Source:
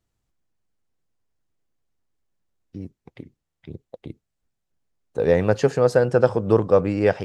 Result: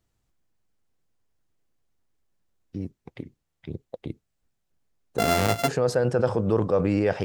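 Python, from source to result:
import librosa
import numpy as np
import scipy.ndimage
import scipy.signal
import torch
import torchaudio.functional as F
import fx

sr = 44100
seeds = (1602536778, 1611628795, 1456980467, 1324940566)

p1 = fx.sample_sort(x, sr, block=64, at=(5.18, 5.67), fade=0.02)
p2 = fx.over_compress(p1, sr, threshold_db=-24.0, ratio=-1.0)
p3 = p1 + (p2 * librosa.db_to_amplitude(2.0))
y = p3 * librosa.db_to_amplitude(-8.0)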